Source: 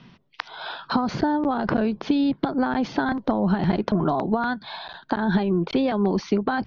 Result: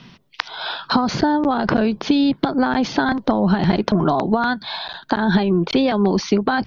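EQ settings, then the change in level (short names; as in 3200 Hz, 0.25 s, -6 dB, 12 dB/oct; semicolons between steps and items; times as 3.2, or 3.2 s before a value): high shelf 3500 Hz +9.5 dB; +4.5 dB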